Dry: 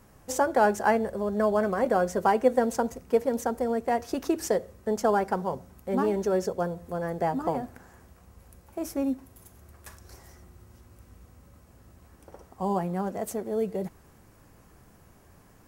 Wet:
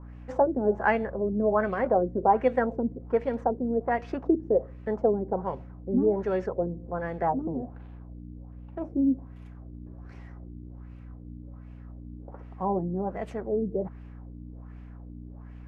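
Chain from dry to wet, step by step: 7.65–8.82 s: median filter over 25 samples; hum 60 Hz, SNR 12 dB; LFO low-pass sine 1.3 Hz 280–2700 Hz; trim -2.5 dB

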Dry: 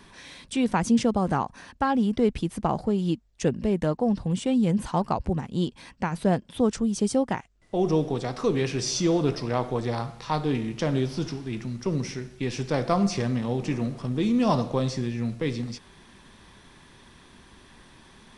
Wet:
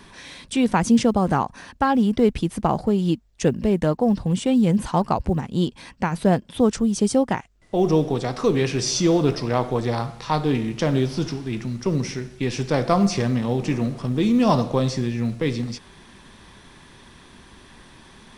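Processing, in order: short-mantissa float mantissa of 6-bit; trim +4.5 dB

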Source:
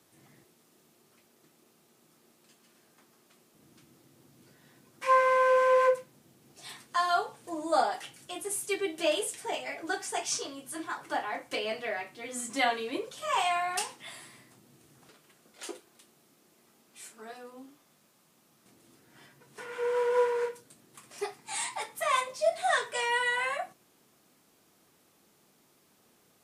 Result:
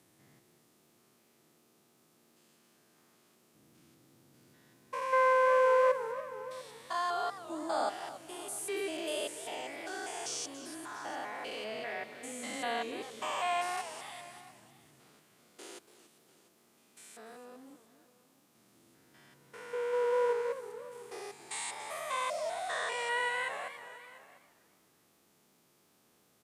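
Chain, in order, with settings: spectrogram pixelated in time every 200 ms; delay 696 ms -19 dB; modulated delay 284 ms, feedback 37%, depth 203 cents, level -14 dB; trim -2 dB

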